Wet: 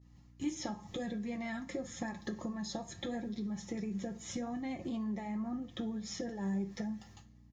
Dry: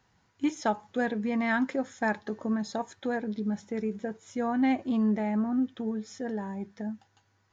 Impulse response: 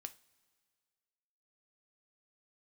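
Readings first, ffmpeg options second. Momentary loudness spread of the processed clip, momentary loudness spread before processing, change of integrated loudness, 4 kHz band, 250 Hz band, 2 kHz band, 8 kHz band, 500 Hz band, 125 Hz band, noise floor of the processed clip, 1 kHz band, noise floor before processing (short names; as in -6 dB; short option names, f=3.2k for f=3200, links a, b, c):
4 LU, 10 LU, -9.0 dB, 0.0 dB, -8.5 dB, -13.0 dB, n/a, -10.5 dB, -3.5 dB, -60 dBFS, -12.5 dB, -70 dBFS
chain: -filter_complex "[0:a]agate=range=-33dB:threshold=-58dB:ratio=3:detection=peak,bass=f=250:g=12,treble=f=4k:g=5,asplit=2[a][b];[b]alimiter=level_in=0.5dB:limit=-24dB:level=0:latency=1:release=88,volume=-0.5dB,volume=0dB[c];[a][c]amix=inputs=2:normalize=0,acompressor=threshold=-29dB:ratio=3,aecho=1:1:5.7:0.51,acrossover=split=350|5300[d][e][f];[d]acompressor=threshold=-41dB:ratio=4[g];[e]acompressor=threshold=-43dB:ratio=4[h];[f]acompressor=threshold=-54dB:ratio=4[i];[g][h][i]amix=inputs=3:normalize=0,flanger=delay=0.5:depth=6.5:regen=-75:speed=0.86:shape=sinusoidal,aeval=exprs='val(0)+0.000631*(sin(2*PI*60*n/s)+sin(2*PI*2*60*n/s)/2+sin(2*PI*3*60*n/s)/3+sin(2*PI*4*60*n/s)/4+sin(2*PI*5*60*n/s)/5)':c=same,asuperstop=centerf=1500:order=20:qfactor=6.9[j];[1:a]atrim=start_sample=2205[k];[j][k]afir=irnorm=-1:irlink=0,volume=10.5dB"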